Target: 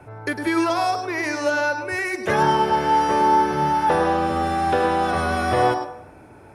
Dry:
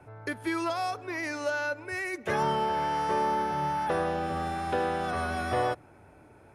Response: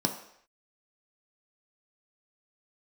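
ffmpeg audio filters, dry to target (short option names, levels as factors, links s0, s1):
-filter_complex "[0:a]asplit=2[s0][s1];[1:a]atrim=start_sample=2205,lowshelf=f=270:g=-12,adelay=103[s2];[s1][s2]afir=irnorm=-1:irlink=0,volume=0.2[s3];[s0][s3]amix=inputs=2:normalize=0,volume=2.51"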